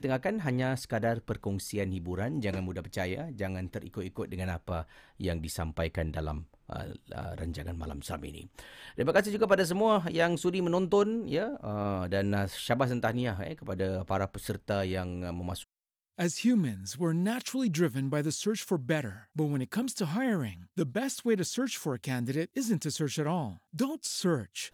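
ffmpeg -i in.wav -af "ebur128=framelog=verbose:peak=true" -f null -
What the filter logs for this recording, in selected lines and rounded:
Integrated loudness:
  I:         -31.9 LUFS
  Threshold: -42.1 LUFS
Loudness range:
  LRA:         8.0 LU
  Threshold: -52.1 LUFS
  LRA low:   -36.7 LUFS
  LRA high:  -28.6 LUFS
True peak:
  Peak:      -11.7 dBFS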